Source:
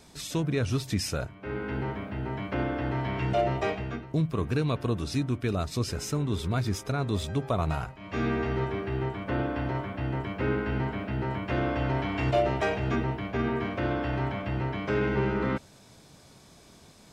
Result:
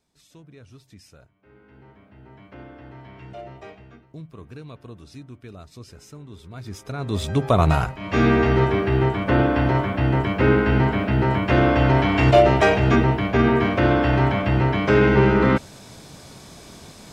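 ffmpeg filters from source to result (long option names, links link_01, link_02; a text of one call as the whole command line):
ffmpeg -i in.wav -af "volume=11dB,afade=type=in:start_time=1.7:duration=0.78:silence=0.446684,afade=type=in:start_time=6.51:duration=0.47:silence=0.266073,afade=type=in:start_time=6.98:duration=0.65:silence=0.251189" out.wav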